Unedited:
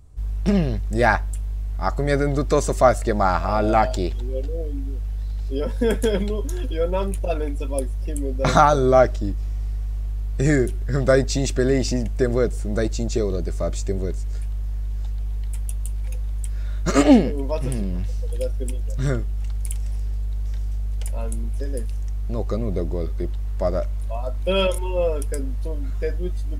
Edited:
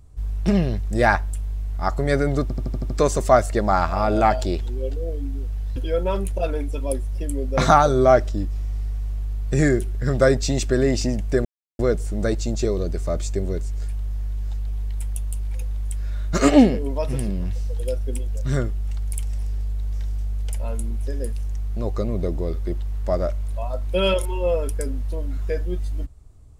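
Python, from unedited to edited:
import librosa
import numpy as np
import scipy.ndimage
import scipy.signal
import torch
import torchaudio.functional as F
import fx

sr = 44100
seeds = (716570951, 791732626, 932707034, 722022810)

y = fx.edit(x, sr, fx.stutter(start_s=2.42, slice_s=0.08, count=7),
    fx.cut(start_s=5.28, length_s=1.35),
    fx.insert_silence(at_s=12.32, length_s=0.34), tone=tone)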